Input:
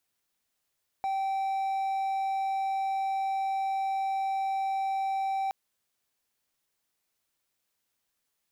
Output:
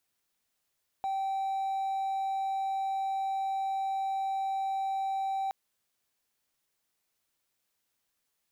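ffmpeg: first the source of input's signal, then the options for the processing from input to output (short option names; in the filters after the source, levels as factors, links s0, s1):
-f lavfi -i "aevalsrc='0.0562*(1-4*abs(mod(776*t+0.25,1)-0.5))':d=4.47:s=44100"
-af "volume=29.9,asoftclip=hard,volume=0.0335"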